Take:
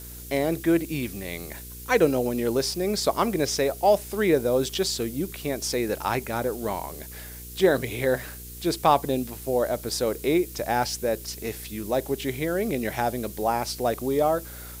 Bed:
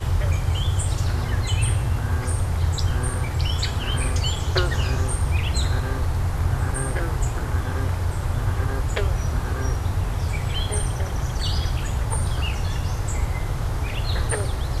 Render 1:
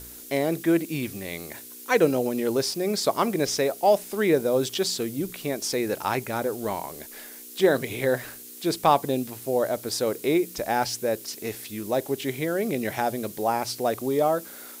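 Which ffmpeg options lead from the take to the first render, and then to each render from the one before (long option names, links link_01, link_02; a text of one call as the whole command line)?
ffmpeg -i in.wav -af "bandreject=frequency=60:width_type=h:width=4,bandreject=frequency=120:width_type=h:width=4,bandreject=frequency=180:width_type=h:width=4" out.wav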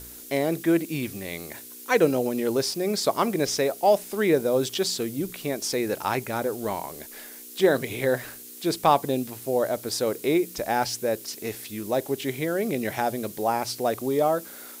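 ffmpeg -i in.wav -af anull out.wav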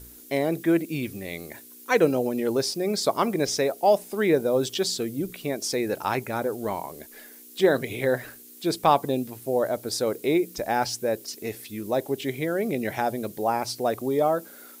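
ffmpeg -i in.wav -af "afftdn=noise_reduction=7:noise_floor=-43" out.wav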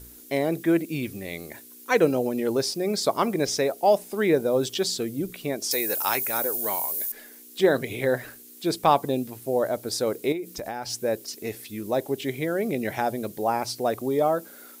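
ffmpeg -i in.wav -filter_complex "[0:a]asettb=1/sr,asplit=3[link_01][link_02][link_03];[link_01]atrim=end=5.714[link_04];[link_02]atrim=start=5.71:end=7.12,asetpts=PTS-STARTPTS,afade=type=in:duration=0.004:curve=qsin,afade=type=out:start_time=1.406:duration=0.004:curve=qsin,aemphasis=mode=production:type=riaa[link_05];[link_03]atrim=start=7.116[link_06];[link_04][link_05]acrossfade=duration=0.004:curve1=hsin:curve2=qsin[link_07];[link_07][link_06]acrossfade=duration=0.004:curve1=qsin:curve2=hsin,asettb=1/sr,asplit=3[link_08][link_09][link_10];[link_08]atrim=end=10.324[link_11];[link_09]atrim=start=10.32:end=10.9,asetpts=PTS-STARTPTS,afade=type=in:duration=0.004:curve=qsin,afade=type=out:start_time=0.576:duration=0.004:curve=qsin,acompressor=threshold=-29dB:ratio=5:attack=3.2:release=140:knee=1:detection=peak[link_12];[link_10]atrim=start=10.896[link_13];[link_11][link_12]acrossfade=duration=0.004:curve1=hsin:curve2=qsin[link_14];[link_14][link_13]acrossfade=duration=0.004:curve1=qsin:curve2=hsin" out.wav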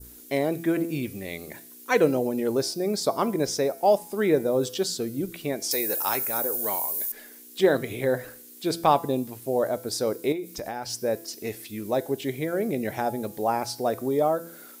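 ffmpeg -i in.wav -af "bandreject=frequency=167.6:width_type=h:width=4,bandreject=frequency=335.2:width_type=h:width=4,bandreject=frequency=502.8:width_type=h:width=4,bandreject=frequency=670.4:width_type=h:width=4,bandreject=frequency=838:width_type=h:width=4,bandreject=frequency=1005.6:width_type=h:width=4,bandreject=frequency=1173.2:width_type=h:width=4,bandreject=frequency=1340.8:width_type=h:width=4,bandreject=frequency=1508.4:width_type=h:width=4,bandreject=frequency=1676:width_type=h:width=4,bandreject=frequency=1843.6:width_type=h:width=4,bandreject=frequency=2011.2:width_type=h:width=4,bandreject=frequency=2178.8:width_type=h:width=4,bandreject=frequency=2346.4:width_type=h:width=4,bandreject=frequency=2514:width_type=h:width=4,bandreject=frequency=2681.6:width_type=h:width=4,bandreject=frequency=2849.2:width_type=h:width=4,bandreject=frequency=3016.8:width_type=h:width=4,bandreject=frequency=3184.4:width_type=h:width=4,bandreject=frequency=3352:width_type=h:width=4,bandreject=frequency=3519.6:width_type=h:width=4,bandreject=frequency=3687.2:width_type=h:width=4,bandreject=frequency=3854.8:width_type=h:width=4,bandreject=frequency=4022.4:width_type=h:width=4,bandreject=frequency=4190:width_type=h:width=4,bandreject=frequency=4357.6:width_type=h:width=4,bandreject=frequency=4525.2:width_type=h:width=4,bandreject=frequency=4692.8:width_type=h:width=4,bandreject=frequency=4860.4:width_type=h:width=4,bandreject=frequency=5028:width_type=h:width=4,bandreject=frequency=5195.6:width_type=h:width=4,bandreject=frequency=5363.2:width_type=h:width=4,bandreject=frequency=5530.8:width_type=h:width=4,bandreject=frequency=5698.4:width_type=h:width=4,bandreject=frequency=5866:width_type=h:width=4,bandreject=frequency=6033.6:width_type=h:width=4,bandreject=frequency=6201.2:width_type=h:width=4,bandreject=frequency=6368.8:width_type=h:width=4,bandreject=frequency=6536.4:width_type=h:width=4,adynamicequalizer=threshold=0.00891:dfrequency=2500:dqfactor=0.72:tfrequency=2500:tqfactor=0.72:attack=5:release=100:ratio=0.375:range=3.5:mode=cutabove:tftype=bell" out.wav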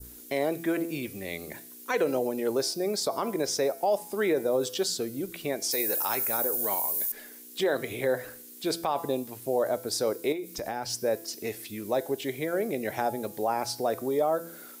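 ffmpeg -i in.wav -filter_complex "[0:a]acrossover=split=340[link_01][link_02];[link_01]acompressor=threshold=-40dB:ratio=3[link_03];[link_03][link_02]amix=inputs=2:normalize=0,alimiter=limit=-17dB:level=0:latency=1:release=43" out.wav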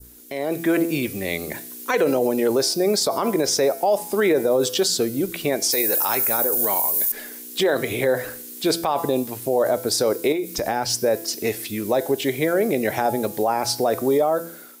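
ffmpeg -i in.wav -af "alimiter=limit=-21dB:level=0:latency=1:release=29,dynaudnorm=framelen=140:gausssize=7:maxgain=10dB" out.wav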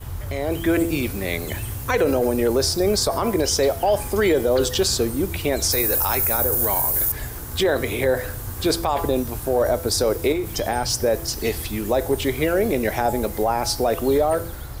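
ffmpeg -i in.wav -i bed.wav -filter_complex "[1:a]volume=-9.5dB[link_01];[0:a][link_01]amix=inputs=2:normalize=0" out.wav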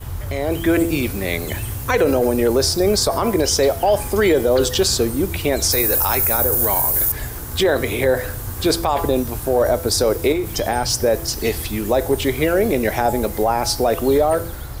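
ffmpeg -i in.wav -af "volume=3dB" out.wav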